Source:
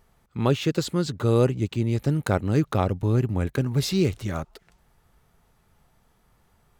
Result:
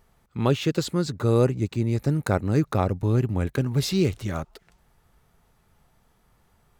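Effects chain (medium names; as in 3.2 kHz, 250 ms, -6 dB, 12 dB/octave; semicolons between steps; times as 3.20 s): 0.91–3.03 s: peaking EQ 3.1 kHz -8.5 dB 0.3 oct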